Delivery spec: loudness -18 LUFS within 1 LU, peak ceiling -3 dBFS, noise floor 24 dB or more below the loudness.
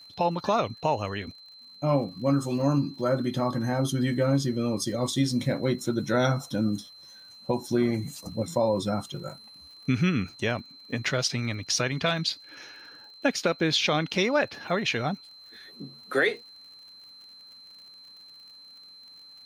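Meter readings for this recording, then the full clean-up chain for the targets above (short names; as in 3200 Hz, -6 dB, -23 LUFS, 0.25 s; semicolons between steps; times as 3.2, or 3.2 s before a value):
ticks 50/s; steady tone 4100 Hz; tone level -47 dBFS; loudness -27.0 LUFS; peak -12.5 dBFS; loudness target -18.0 LUFS
-> de-click; notch 4100 Hz, Q 30; gain +9 dB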